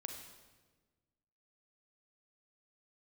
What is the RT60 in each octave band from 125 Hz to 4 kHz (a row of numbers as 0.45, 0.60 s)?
1.9, 1.7, 1.5, 1.2, 1.1, 1.1 s